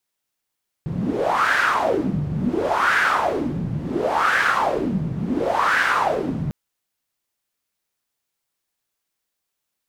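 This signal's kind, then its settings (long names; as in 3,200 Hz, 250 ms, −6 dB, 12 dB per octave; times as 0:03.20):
wind from filtered noise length 5.65 s, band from 150 Hz, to 1,600 Hz, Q 5.1, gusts 4, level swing 6 dB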